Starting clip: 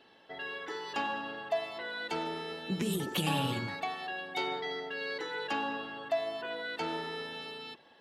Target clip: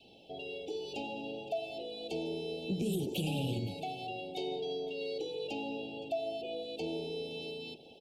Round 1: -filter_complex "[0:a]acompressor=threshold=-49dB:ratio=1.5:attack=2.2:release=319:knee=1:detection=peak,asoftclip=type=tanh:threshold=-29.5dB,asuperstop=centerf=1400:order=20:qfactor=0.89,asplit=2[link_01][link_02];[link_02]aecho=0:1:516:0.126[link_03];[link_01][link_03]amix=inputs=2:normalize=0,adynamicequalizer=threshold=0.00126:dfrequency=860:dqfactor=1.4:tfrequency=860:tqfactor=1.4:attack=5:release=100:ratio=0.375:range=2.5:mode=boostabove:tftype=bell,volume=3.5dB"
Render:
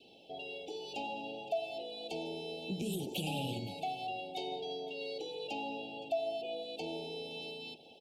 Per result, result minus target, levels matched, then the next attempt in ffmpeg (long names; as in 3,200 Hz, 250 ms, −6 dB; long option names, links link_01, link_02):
1,000 Hz band +4.5 dB; 125 Hz band −3.5 dB
-filter_complex "[0:a]acompressor=threshold=-49dB:ratio=1.5:attack=2.2:release=319:knee=1:detection=peak,asoftclip=type=tanh:threshold=-29.5dB,asuperstop=centerf=1400:order=20:qfactor=0.89,asplit=2[link_01][link_02];[link_02]aecho=0:1:516:0.126[link_03];[link_01][link_03]amix=inputs=2:normalize=0,adynamicequalizer=threshold=0.00126:dfrequency=410:dqfactor=1.4:tfrequency=410:tqfactor=1.4:attack=5:release=100:ratio=0.375:range=2.5:mode=boostabove:tftype=bell,volume=3.5dB"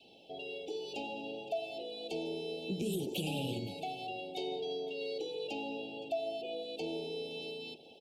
125 Hz band −3.5 dB
-filter_complex "[0:a]acompressor=threshold=-49dB:ratio=1.5:attack=2.2:release=319:knee=1:detection=peak,lowshelf=frequency=130:gain=11.5,asoftclip=type=tanh:threshold=-29.5dB,asuperstop=centerf=1400:order=20:qfactor=0.89,asplit=2[link_01][link_02];[link_02]aecho=0:1:516:0.126[link_03];[link_01][link_03]amix=inputs=2:normalize=0,adynamicequalizer=threshold=0.00126:dfrequency=410:dqfactor=1.4:tfrequency=410:tqfactor=1.4:attack=5:release=100:ratio=0.375:range=2.5:mode=boostabove:tftype=bell,volume=3.5dB"